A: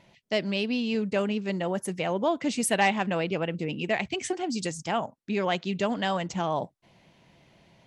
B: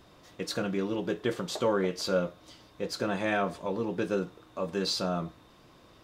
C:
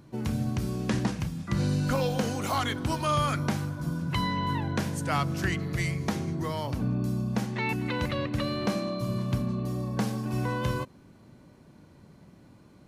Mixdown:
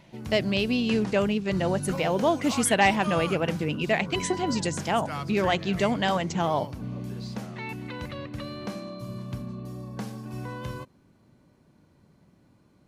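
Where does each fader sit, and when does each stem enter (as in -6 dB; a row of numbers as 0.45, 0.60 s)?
+2.5, -16.5, -6.5 dB; 0.00, 2.35, 0.00 s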